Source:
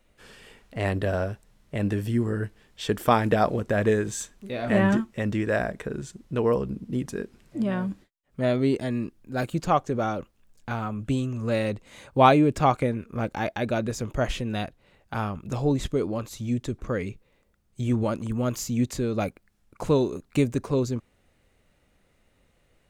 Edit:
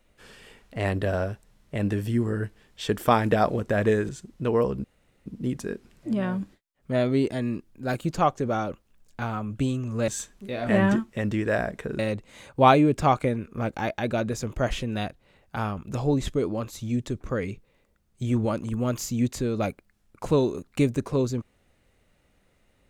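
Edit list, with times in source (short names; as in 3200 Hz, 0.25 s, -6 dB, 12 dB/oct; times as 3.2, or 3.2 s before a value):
4.09–6 move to 11.57
6.75 insert room tone 0.42 s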